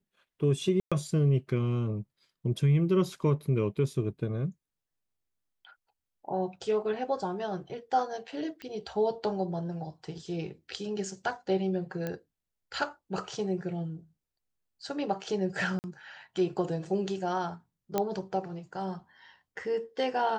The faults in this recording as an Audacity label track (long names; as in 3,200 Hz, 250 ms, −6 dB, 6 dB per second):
0.800000	0.920000	drop-out 116 ms
8.620000	8.620000	click −27 dBFS
12.070000	12.070000	click −20 dBFS
15.790000	15.840000	drop-out 49 ms
17.980000	17.980000	click −13 dBFS